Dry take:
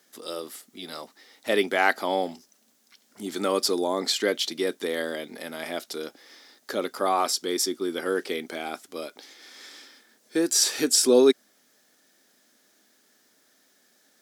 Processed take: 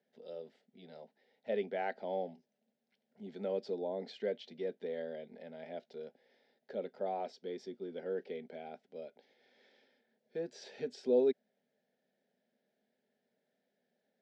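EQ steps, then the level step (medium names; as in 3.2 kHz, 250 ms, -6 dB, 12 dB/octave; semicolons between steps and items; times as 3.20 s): low-pass 1.1 kHz 6 dB/octave; distance through air 210 m; static phaser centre 310 Hz, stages 6; -7.5 dB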